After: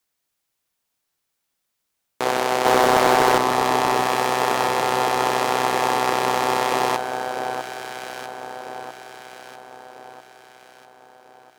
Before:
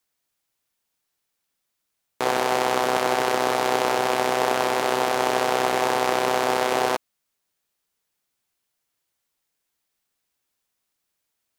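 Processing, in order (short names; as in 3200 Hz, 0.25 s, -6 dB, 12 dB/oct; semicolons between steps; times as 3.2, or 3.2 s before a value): 2.65–3.38 sample leveller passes 2; echo with dull and thin repeats by turns 0.648 s, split 1400 Hz, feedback 65%, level -6 dB; gain +1 dB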